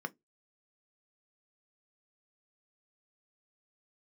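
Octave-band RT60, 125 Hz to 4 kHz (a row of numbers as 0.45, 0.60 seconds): 0.20, 0.20, 0.20, 0.15, 0.10, 0.10 seconds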